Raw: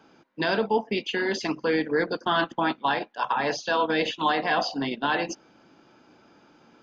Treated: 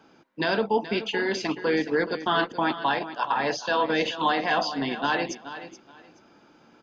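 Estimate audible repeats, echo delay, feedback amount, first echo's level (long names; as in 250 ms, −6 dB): 2, 426 ms, 21%, −13.0 dB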